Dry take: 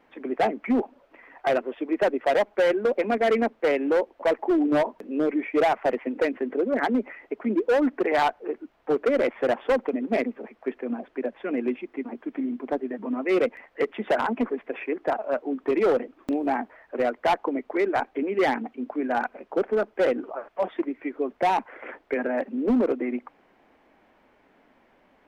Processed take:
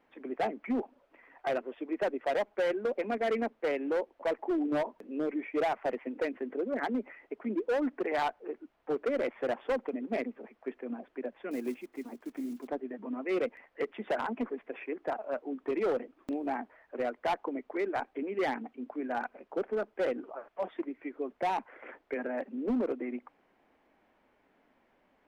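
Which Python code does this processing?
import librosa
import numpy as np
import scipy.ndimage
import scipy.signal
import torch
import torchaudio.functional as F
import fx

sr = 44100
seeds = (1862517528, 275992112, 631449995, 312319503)

y = fx.block_float(x, sr, bits=5, at=(11.51, 12.69))
y = y * librosa.db_to_amplitude(-8.5)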